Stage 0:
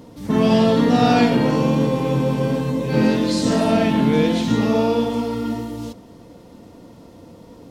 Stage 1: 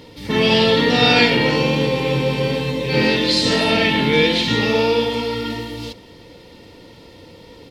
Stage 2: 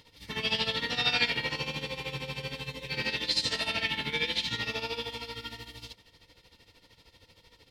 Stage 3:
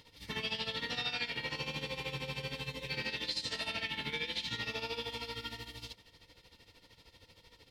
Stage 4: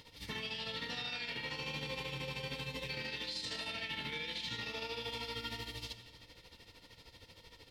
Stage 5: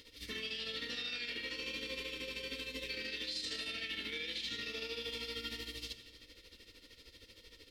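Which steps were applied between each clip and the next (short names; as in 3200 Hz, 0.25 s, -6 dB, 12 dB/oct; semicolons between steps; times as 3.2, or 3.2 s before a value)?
band shelf 3000 Hz +11.5 dB; comb 2.2 ms, depth 42%
bell 310 Hz -14.5 dB 2.9 oct; tremolo 13 Hz, depth 75%; gain -6.5 dB
compressor 4:1, threshold -33 dBFS, peak gain reduction 10 dB; gain -1.5 dB
limiter -34 dBFS, peak gain reduction 10.5 dB; reverb RT60 1.5 s, pre-delay 5 ms, DRR 11 dB; gain +2.5 dB
fixed phaser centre 340 Hz, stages 4; gain +1.5 dB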